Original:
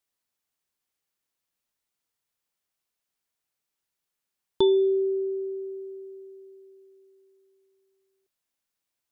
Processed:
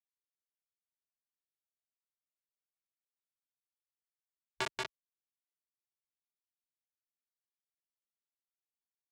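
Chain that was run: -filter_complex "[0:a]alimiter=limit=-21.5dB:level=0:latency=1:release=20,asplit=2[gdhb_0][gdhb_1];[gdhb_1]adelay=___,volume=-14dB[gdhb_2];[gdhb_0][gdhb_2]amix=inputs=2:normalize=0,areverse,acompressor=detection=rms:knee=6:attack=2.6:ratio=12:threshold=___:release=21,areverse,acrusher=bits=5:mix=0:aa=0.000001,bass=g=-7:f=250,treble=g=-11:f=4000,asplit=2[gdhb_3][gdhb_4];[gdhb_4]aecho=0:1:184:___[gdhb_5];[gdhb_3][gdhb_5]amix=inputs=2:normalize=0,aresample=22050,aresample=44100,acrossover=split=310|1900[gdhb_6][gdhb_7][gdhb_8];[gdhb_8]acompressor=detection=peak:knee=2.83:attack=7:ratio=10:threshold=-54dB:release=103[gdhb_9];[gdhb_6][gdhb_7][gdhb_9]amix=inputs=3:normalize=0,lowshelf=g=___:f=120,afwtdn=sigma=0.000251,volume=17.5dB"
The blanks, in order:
37, -39dB, 0.708, -3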